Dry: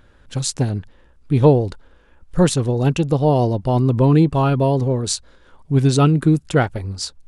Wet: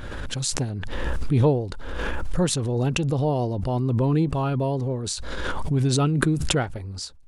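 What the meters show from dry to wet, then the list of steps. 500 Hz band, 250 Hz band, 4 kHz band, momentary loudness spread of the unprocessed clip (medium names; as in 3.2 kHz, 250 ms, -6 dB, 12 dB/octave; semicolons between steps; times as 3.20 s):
-7.0 dB, -7.0 dB, -2.0 dB, 11 LU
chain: swell ahead of each attack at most 20 dB/s; trim -8 dB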